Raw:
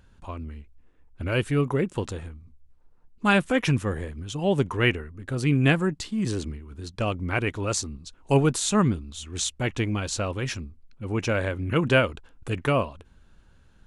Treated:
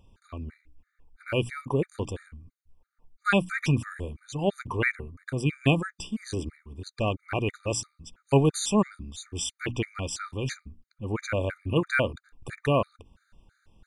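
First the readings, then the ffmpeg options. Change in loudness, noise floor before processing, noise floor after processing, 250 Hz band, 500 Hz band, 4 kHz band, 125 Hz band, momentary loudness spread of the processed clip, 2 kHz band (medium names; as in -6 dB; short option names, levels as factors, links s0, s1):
-3.0 dB, -57 dBFS, -80 dBFS, -3.5 dB, -2.5 dB, -3.5 dB, -3.5 dB, 16 LU, -3.0 dB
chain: -af "bandreject=f=60:t=h:w=6,bandreject=f=120:t=h:w=6,bandreject=f=180:t=h:w=6,bandreject=f=240:t=h:w=6,bandreject=f=300:t=h:w=6,afftfilt=real='re*gt(sin(2*PI*3*pts/sr)*(1-2*mod(floor(b*sr/1024/1200),2)),0)':imag='im*gt(sin(2*PI*3*pts/sr)*(1-2*mod(floor(b*sr/1024/1200),2)),0)':win_size=1024:overlap=0.75"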